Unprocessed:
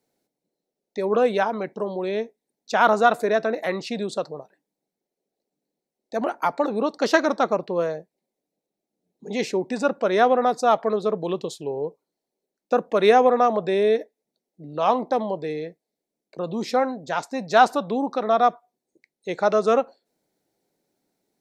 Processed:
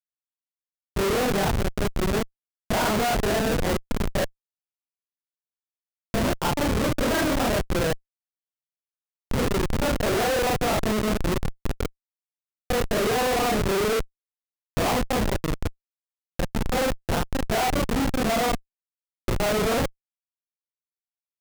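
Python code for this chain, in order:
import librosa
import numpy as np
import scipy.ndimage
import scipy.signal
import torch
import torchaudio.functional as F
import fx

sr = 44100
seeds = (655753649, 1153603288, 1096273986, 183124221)

y = fx.frame_reverse(x, sr, frame_ms=103.0)
y = fx.low_shelf(y, sr, hz=86.0, db=7.5)
y = fx.chorus_voices(y, sr, voices=4, hz=0.14, base_ms=27, depth_ms=2.1, mix_pct=45)
y = fx.schmitt(y, sr, flips_db=-29.0)
y = y * 10.0 ** (7.5 / 20.0)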